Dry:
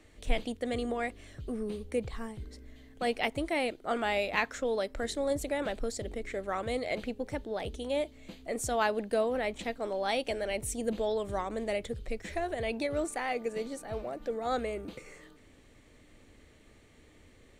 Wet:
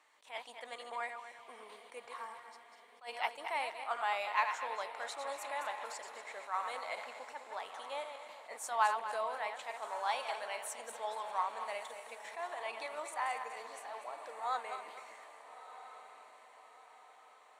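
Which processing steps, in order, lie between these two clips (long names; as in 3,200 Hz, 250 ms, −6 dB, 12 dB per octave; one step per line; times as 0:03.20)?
feedback delay that plays each chunk backwards 120 ms, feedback 56%, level −7.5 dB
high-pass with resonance 970 Hz, resonance Q 4.7
on a send: feedback delay with all-pass diffusion 1,310 ms, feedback 47%, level −13 dB
on the sum: level that may rise only so fast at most 220 dB per second
level −7.5 dB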